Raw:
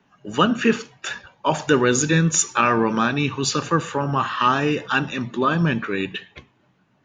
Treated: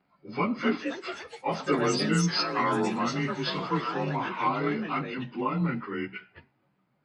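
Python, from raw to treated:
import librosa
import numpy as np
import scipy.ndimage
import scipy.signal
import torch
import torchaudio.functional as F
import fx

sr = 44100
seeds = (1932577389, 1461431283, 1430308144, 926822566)

y = fx.partial_stretch(x, sr, pct=90)
y = fx.echo_pitch(y, sr, ms=334, semitones=4, count=3, db_per_echo=-6.0)
y = y * librosa.db_to_amplitude(-7.0)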